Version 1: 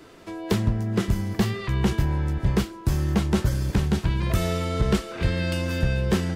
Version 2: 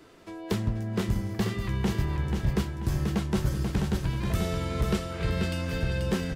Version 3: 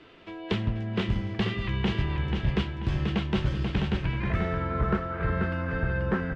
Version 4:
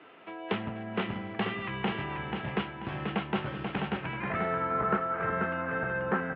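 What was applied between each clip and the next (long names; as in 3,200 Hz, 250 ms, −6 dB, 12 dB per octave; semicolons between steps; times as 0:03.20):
repeating echo 486 ms, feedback 35%, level −5 dB; level −5.5 dB
low-pass filter sweep 3,000 Hz → 1,500 Hz, 0:03.84–0:04.72
loudspeaker in its box 230–2,900 Hz, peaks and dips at 340 Hz −4 dB, 790 Hz +6 dB, 1,300 Hz +4 dB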